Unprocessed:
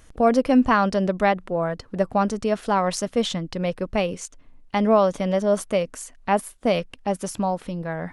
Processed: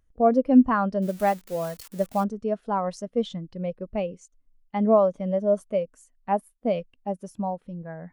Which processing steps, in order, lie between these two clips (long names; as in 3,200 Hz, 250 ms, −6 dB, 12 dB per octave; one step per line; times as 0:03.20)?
0:01.02–0:02.24: spike at every zero crossing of −13.5 dBFS
every bin expanded away from the loudest bin 1.5 to 1